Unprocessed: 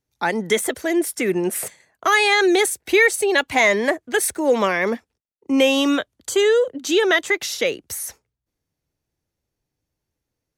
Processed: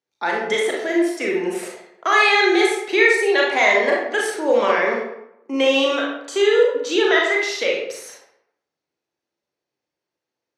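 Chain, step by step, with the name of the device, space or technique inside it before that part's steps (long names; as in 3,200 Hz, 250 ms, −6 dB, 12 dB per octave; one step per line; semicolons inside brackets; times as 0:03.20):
supermarket ceiling speaker (band-pass filter 340–5,500 Hz; convolution reverb RT60 0.75 s, pre-delay 29 ms, DRR −2.5 dB)
level −2.5 dB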